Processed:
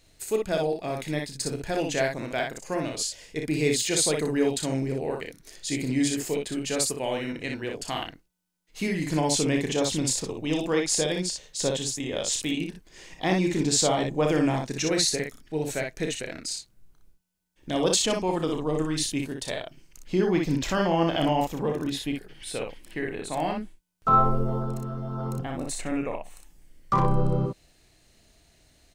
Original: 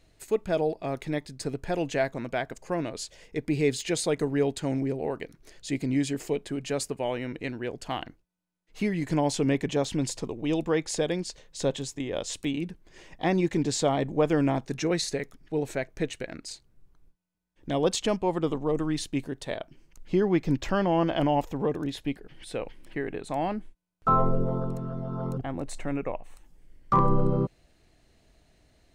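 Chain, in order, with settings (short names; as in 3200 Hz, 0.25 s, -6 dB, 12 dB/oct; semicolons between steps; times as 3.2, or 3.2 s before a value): high shelf 3000 Hz +10.5 dB; on a send: early reflections 32 ms -8 dB, 60 ms -4 dB; on the sum: gain -1.5 dB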